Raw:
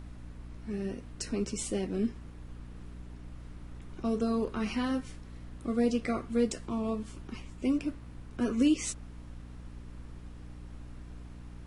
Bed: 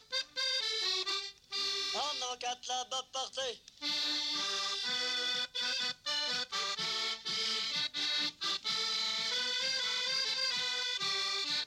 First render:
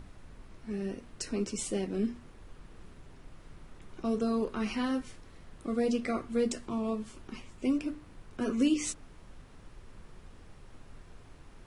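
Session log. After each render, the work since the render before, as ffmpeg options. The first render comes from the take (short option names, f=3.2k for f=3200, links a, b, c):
-af "bandreject=f=60:t=h:w=6,bandreject=f=120:t=h:w=6,bandreject=f=180:t=h:w=6,bandreject=f=240:t=h:w=6,bandreject=f=300:t=h:w=6"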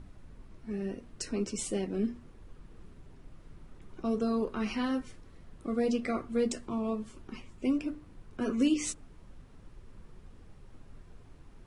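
-af "afftdn=nr=6:nf=-54"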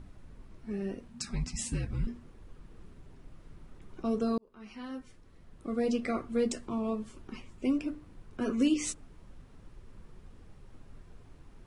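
-filter_complex "[0:a]asettb=1/sr,asplit=3[a][b][c];[a]atrim=end=1.084[d];[b]atrim=start=1.08:end=2.07,asetpts=PTS-STARTPTS,afade=t=in:d=0.004:c=qsin,afade=t=out:st=0.986:d=0.004:c=qsin,afreqshift=-250[e];[c]atrim=start=2.066[f];[d][e]acrossfade=d=0.004:c1=hsin:c2=qsin[g];[g][f]acrossfade=d=0.004:c1=qsin:c2=hsin,asplit=2[h][i];[h]atrim=end=4.38,asetpts=PTS-STARTPTS,afade=t=out:st=4.376:d=0.004:c=hsin[j];[i]atrim=start=4.38,asetpts=PTS-STARTPTS,afade=t=in:d=1.6[k];[j][k]concat=n=2:v=0:a=1"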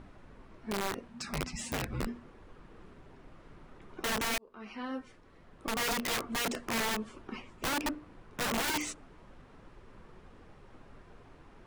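-filter_complex "[0:a]asplit=2[a][b];[b]highpass=f=720:p=1,volume=15dB,asoftclip=type=tanh:threshold=-17dB[c];[a][c]amix=inputs=2:normalize=0,lowpass=f=1.5k:p=1,volume=-6dB,aeval=exprs='(mod(22.4*val(0)+1,2)-1)/22.4':c=same"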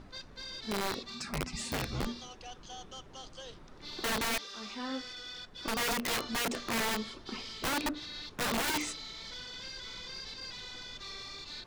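-filter_complex "[1:a]volume=-10.5dB[a];[0:a][a]amix=inputs=2:normalize=0"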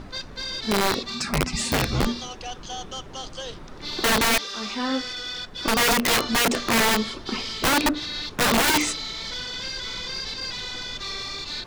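-af "volume=12dB"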